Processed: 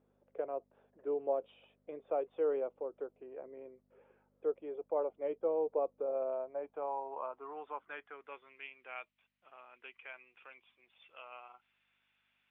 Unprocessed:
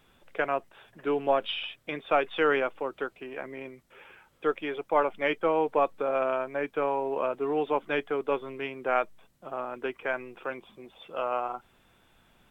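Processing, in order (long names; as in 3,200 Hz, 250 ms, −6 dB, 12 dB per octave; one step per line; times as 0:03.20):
mains hum 50 Hz, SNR 21 dB
dynamic equaliser 1,700 Hz, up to −7 dB, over −45 dBFS, Q 2
band-pass filter sweep 490 Hz → 2,500 Hz, 0:06.16–0:08.73
high-frequency loss of the air 140 metres
level −4.5 dB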